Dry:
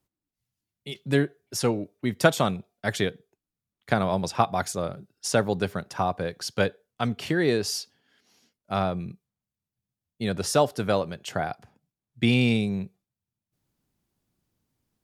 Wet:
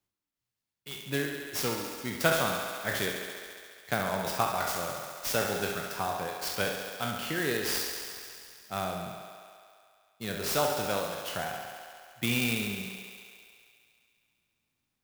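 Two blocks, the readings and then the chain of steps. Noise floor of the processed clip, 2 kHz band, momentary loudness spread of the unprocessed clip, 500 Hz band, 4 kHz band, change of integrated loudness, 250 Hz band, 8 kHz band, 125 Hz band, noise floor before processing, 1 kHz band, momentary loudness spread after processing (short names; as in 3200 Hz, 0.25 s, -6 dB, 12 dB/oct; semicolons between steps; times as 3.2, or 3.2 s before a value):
under -85 dBFS, -1.0 dB, 11 LU, -6.5 dB, -1.0 dB, -4.5 dB, -9.0 dB, -0.5 dB, -10.0 dB, under -85 dBFS, -4.0 dB, 16 LU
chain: spectral trails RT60 0.48 s; tilt shelf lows -4 dB, about 1100 Hz; thinning echo 69 ms, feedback 83%, high-pass 180 Hz, level -7.5 dB; clock jitter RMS 0.032 ms; gain -7 dB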